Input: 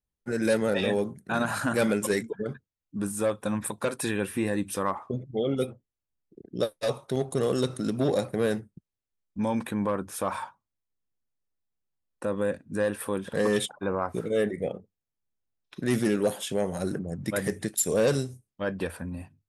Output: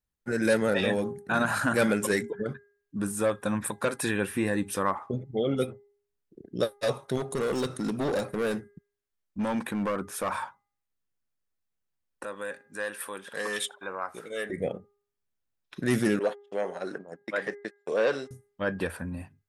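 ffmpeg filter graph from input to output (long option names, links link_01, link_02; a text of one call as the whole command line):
ffmpeg -i in.wav -filter_complex "[0:a]asettb=1/sr,asplit=3[link_01][link_02][link_03];[link_01]atrim=end=7.174[link_04];[link_02]atrim=start=7.17:end=10.32,asetpts=PTS-STARTPTS,afade=type=in:duration=0.004:curve=qsin,afade=type=out:start_time=3.146:duration=0.004:curve=qsin,equalizer=frequency=110:width_type=o:width=0.44:gain=-5.5,asoftclip=type=hard:threshold=-24.5dB[link_05];[link_03]atrim=start=10.316[link_06];[link_04][link_05]acrossfade=duration=0.004:curve1=hsin:curve2=qsin[link_07];[link_07][link_06]acrossfade=duration=0.004:curve1=qsin:curve2=hsin,asettb=1/sr,asplit=3[link_08][link_09][link_10];[link_08]atrim=end=12.244[link_11];[link_09]atrim=start=12.24:end=14.5,asetpts=PTS-STARTPTS,afade=type=in:duration=0.004:curve=qsin,afade=type=out:start_time=2.256:duration=0.004:curve=qsin,highpass=frequency=1400:poles=1,asplit=2[link_12][link_13];[link_13]adelay=81,lowpass=frequency=2100:poles=1,volume=-24dB,asplit=2[link_14][link_15];[link_15]adelay=81,lowpass=frequency=2100:poles=1,volume=0.31[link_16];[link_12][link_14][link_16]amix=inputs=3:normalize=0,atrim=end_sample=99666[link_17];[link_10]atrim=start=14.496[link_18];[link_11][link_17]acrossfade=duration=0.004:curve1=hsin:curve2=qsin[link_19];[link_19][link_18]acrossfade=duration=0.004:curve1=qsin:curve2=hsin,asettb=1/sr,asplit=3[link_20][link_21][link_22];[link_20]atrim=end=16.194[link_23];[link_21]atrim=start=16.19:end=18.31,asetpts=PTS-STARTPTS,afade=type=in:duration=0.004:curve=qsin,afade=type=out:start_time=2.116:duration=0.004:curve=qsin,acrossover=split=4000[link_24][link_25];[link_25]acompressor=threshold=-46dB:ratio=4:attack=1:release=60[link_26];[link_24][link_26]amix=inputs=2:normalize=0,agate=range=-48dB:threshold=-34dB:ratio=16:release=100:detection=peak,highpass=420,lowpass=5200[link_27];[link_22]atrim=start=18.306[link_28];[link_23][link_27]acrossfade=duration=0.004:curve1=hsin:curve2=qsin[link_29];[link_29][link_28]acrossfade=duration=0.004:curve1=qsin:curve2=hsin,equalizer=frequency=1600:width_type=o:width=0.9:gain=4,bandreject=frequency=406.9:width_type=h:width=4,bandreject=frequency=813.8:width_type=h:width=4,bandreject=frequency=1220.7:width_type=h:width=4,bandreject=frequency=1627.6:width_type=h:width=4,bandreject=frequency=2034.5:width_type=h:width=4" out.wav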